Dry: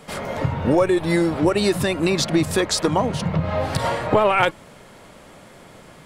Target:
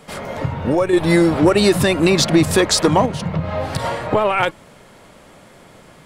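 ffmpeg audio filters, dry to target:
ffmpeg -i in.wav -filter_complex "[0:a]asettb=1/sr,asplit=3[link_01][link_02][link_03];[link_01]atrim=end=0.934[link_04];[link_02]atrim=start=0.93:end=3.06,asetpts=PTS-STARTPTS,afade=type=in:duration=0.004:curve=qsin,afade=type=out:start_time=2.126:duration=0.004:curve=qsin,acontrast=54[link_05];[link_03]atrim=start=3.056[link_06];[link_04][link_05]acrossfade=duration=0.004:curve1=hsin:curve2=qsin[link_07];[link_07][link_06]acrossfade=duration=0.004:curve1=qsin:curve2=hsin" out.wav

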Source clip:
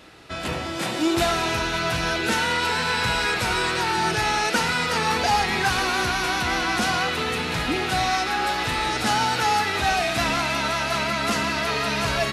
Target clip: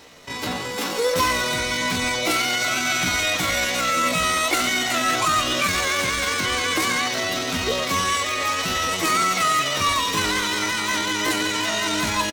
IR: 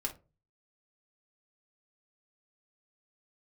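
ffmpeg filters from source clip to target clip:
-filter_complex "[0:a]asplit=2[link_01][link_02];[link_02]adelay=240,lowpass=frequency=1300:poles=1,volume=-21.5dB,asplit=2[link_03][link_04];[link_04]adelay=240,lowpass=frequency=1300:poles=1,volume=0.25[link_05];[link_01][link_03][link_05]amix=inputs=3:normalize=0,asetrate=66075,aresample=44100,atempo=0.66742,asplit=2[link_06][link_07];[1:a]atrim=start_sample=2205[link_08];[link_07][link_08]afir=irnorm=-1:irlink=0,volume=-8dB[link_09];[link_06][link_09]amix=inputs=2:normalize=0,volume=-1.5dB"

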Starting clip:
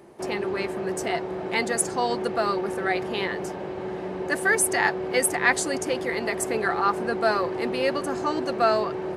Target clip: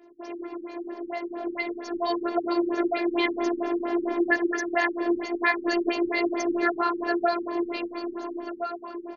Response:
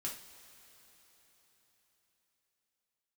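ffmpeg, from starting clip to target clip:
-af "flanger=delay=17:depth=3.3:speed=2.2,acompressor=threshold=-30dB:ratio=5,highpass=frequency=220:width=0.5412,highpass=frequency=220:width=1.3066,dynaudnorm=framelen=280:gausssize=13:maxgain=12.5dB,afftfilt=real='hypot(re,im)*cos(PI*b)':imag='0':win_size=512:overlap=0.75,aecho=1:1:92|184|276|368|460:0.282|0.127|0.0571|0.0257|0.0116,afftfilt=real='re*lt(b*sr/1024,330*pow(7000/330,0.5+0.5*sin(2*PI*4.4*pts/sr)))':imag='im*lt(b*sr/1024,330*pow(7000/330,0.5+0.5*sin(2*PI*4.4*pts/sr)))':win_size=1024:overlap=0.75,volume=1.5dB"

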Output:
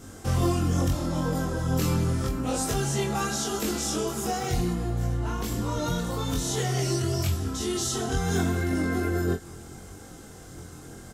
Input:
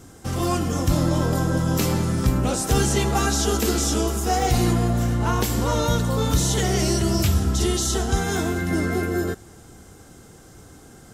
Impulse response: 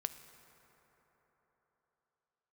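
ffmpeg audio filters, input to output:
-filter_complex "[0:a]asettb=1/sr,asplit=3[link_01][link_02][link_03];[link_01]atrim=end=4.574[link_04];[link_02]atrim=start=4.57:end=5.77,asetpts=PTS-STARTPTS,afade=type=in:duration=0.004:curve=qsin,afade=type=out:start_time=1.196:duration=0.004:curve=qsin,lowshelf=frequency=160:gain=9[link_05];[link_03]atrim=start=5.766[link_06];[link_04][link_05]acrossfade=duration=0.004:curve1=hsin:curve2=qsin[link_07];[link_07][link_06]acrossfade=duration=0.004:curve1=qsin:curve2=hsin,acompressor=threshold=-26dB:ratio=6,flanger=delay=19:depth=4.8:speed=0.79,asplit=2[link_08][link_09];[link_09]adelay=23,volume=-4dB[link_10];[link_08][link_10]amix=inputs=2:normalize=0,volume=3.5dB"

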